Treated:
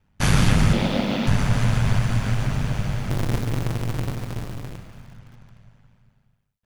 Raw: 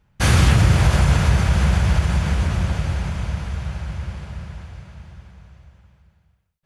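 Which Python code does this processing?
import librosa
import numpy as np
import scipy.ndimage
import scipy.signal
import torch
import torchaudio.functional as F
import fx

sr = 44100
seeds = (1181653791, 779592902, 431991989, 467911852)

y = fx.halfwave_hold(x, sr, at=(3.1, 4.78))
y = y * np.sin(2.0 * np.pi * 50.0 * np.arange(len(y)) / sr)
y = fx.cabinet(y, sr, low_hz=200.0, low_slope=24, high_hz=4900.0, hz=(230.0, 320.0, 530.0, 1100.0, 1600.0, 3500.0), db=(8, 7, 7, -6, -8, 5), at=(0.73, 1.27))
y = fx.echo_crushed(y, sr, ms=146, feedback_pct=55, bits=7, wet_db=-10.5)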